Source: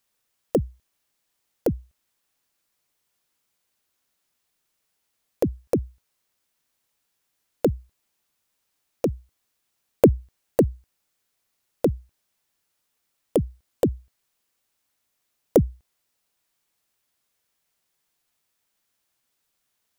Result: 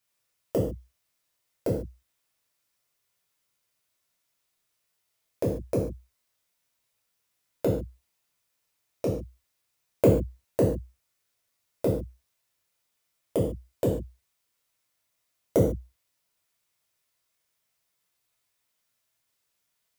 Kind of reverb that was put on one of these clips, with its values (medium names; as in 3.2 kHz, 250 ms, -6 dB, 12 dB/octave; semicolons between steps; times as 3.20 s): gated-style reverb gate 170 ms falling, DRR -4.5 dB; trim -7.5 dB